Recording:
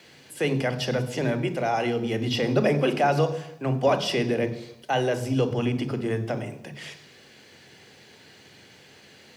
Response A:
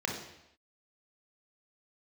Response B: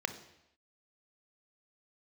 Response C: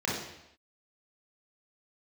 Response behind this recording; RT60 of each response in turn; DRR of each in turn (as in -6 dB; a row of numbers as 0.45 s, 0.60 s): B; no single decay rate, no single decay rate, no single decay rate; 0.0 dB, 9.5 dB, -5.5 dB